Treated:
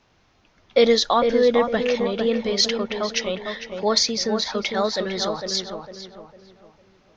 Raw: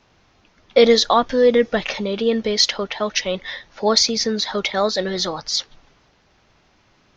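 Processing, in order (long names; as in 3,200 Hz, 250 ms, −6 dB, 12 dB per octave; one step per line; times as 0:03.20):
feedback echo with a low-pass in the loop 453 ms, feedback 39%, low-pass 1,600 Hz, level −5 dB
level −3.5 dB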